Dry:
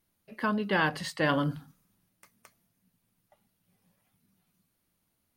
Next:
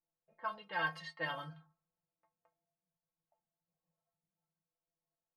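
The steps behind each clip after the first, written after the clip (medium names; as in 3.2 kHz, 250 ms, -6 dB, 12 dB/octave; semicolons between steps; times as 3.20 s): resonant low shelf 440 Hz -10.5 dB, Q 1.5; level-controlled noise filter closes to 750 Hz, open at -24 dBFS; inharmonic resonator 160 Hz, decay 0.22 s, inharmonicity 0.008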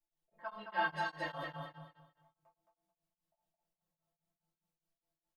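on a send: feedback delay 218 ms, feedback 29%, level -4 dB; on the sum: simulated room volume 130 m³, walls furnished, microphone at 2.9 m; tremolo of two beating tones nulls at 4.9 Hz; trim -5 dB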